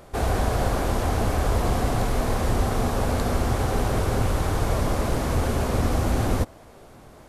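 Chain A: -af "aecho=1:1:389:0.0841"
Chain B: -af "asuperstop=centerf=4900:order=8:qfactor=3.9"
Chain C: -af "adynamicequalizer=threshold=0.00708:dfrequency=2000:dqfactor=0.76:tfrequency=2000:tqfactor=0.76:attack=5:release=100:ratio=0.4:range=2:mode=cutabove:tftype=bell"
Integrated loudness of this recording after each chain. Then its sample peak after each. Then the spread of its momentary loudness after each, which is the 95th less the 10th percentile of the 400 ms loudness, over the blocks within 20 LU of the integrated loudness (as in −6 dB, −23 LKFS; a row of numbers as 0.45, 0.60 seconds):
−25.0, −25.0, −25.5 LKFS; −10.0, −10.5, −10.5 dBFS; 1, 1, 1 LU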